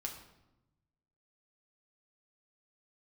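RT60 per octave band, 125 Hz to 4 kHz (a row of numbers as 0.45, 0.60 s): 1.6, 1.3, 1.0, 0.90, 0.75, 0.65 s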